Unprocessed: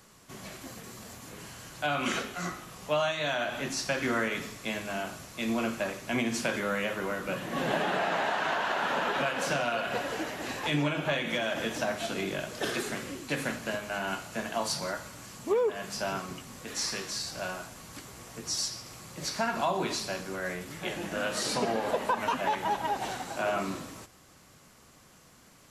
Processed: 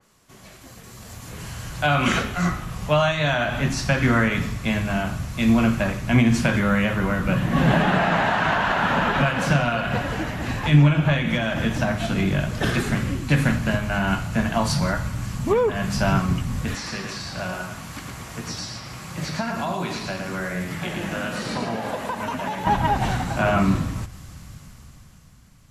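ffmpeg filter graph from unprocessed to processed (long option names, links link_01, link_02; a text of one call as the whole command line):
ffmpeg -i in.wav -filter_complex "[0:a]asettb=1/sr,asplit=3[link_01][link_02][link_03];[link_01]atrim=end=16.754[link_04];[link_02]atrim=start=16.75:end=22.67,asetpts=PTS-STARTPTS,afade=type=in:duration=0.004:curve=qsin,afade=type=out:start_time=5.916:duration=0.004:curve=qsin,highpass=frequency=430:poles=1,acrossover=split=590|4300[link_05][link_06][link_07];[link_05]acompressor=threshold=-41dB:ratio=4[link_08];[link_06]acompressor=threshold=-42dB:ratio=4[link_09];[link_07]acompressor=threshold=-50dB:ratio=4[link_10];[link_08][link_09][link_10]amix=inputs=3:normalize=0,aecho=1:1:111:0.596,atrim=end_sample=261072[link_11];[link_03]atrim=start=22.666[link_12];[link_04][link_11]acrossfade=duration=0.004:curve1=hsin:curve2=qsin[link_13];[link_13][link_12]acrossfade=duration=0.004:curve1=qsin:curve2=hsin,asubboost=boost=9.5:cutoff=130,dynaudnorm=framelen=200:gausssize=13:maxgain=15dB,adynamicequalizer=threshold=0.00794:dfrequency=3100:dqfactor=0.7:tfrequency=3100:tqfactor=0.7:attack=5:release=100:ratio=0.375:range=3.5:mode=cutabove:tftype=highshelf,volume=-3dB" out.wav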